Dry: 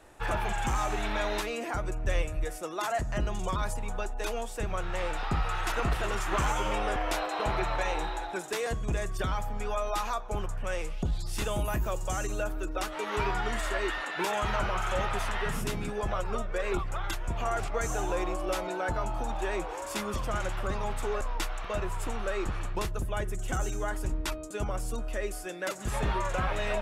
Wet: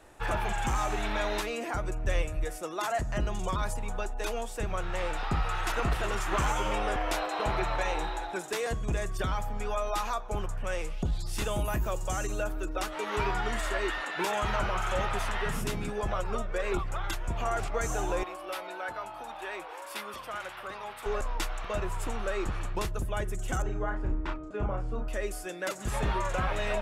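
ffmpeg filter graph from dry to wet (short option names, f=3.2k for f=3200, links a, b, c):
-filter_complex "[0:a]asettb=1/sr,asplit=3[a][b][c];[a]atrim=end=18.234[d];[b]atrim=start=18.23:end=21.06,asetpts=PTS-STARTPTS,afade=t=in:d=0.004:c=qsin,afade=t=out:st=2.826:d=0.004:c=qsin,highpass=f=1.1k:p=1,equalizer=f=6.9k:w=1.7:g=-11[e];[c]atrim=start=21.056[f];[d][e]acrossfade=d=0.004:c1=hsin:c2=qsin[g];[g][f]acrossfade=d=0.004:c1=qsin:c2=hsin,asettb=1/sr,asplit=3[h][i][j];[h]atrim=end=23.624[k];[i]atrim=start=23.62:end=25.08,asetpts=PTS-STARTPTS,afade=t=in:d=0.004:c=qsin,afade=t=out:st=1.456:d=0.004:c=qsin,lowpass=1.8k,asplit=2[l][m];[m]adelay=33,volume=-4.5dB[n];[l][n]amix=inputs=2:normalize=0,atrim=end_sample=64386[o];[j]atrim=start=25.076[p];[k][o]acrossfade=d=0.004:c1=hsin:c2=qsin[q];[q][p]acrossfade=d=0.004:c1=qsin:c2=hsin"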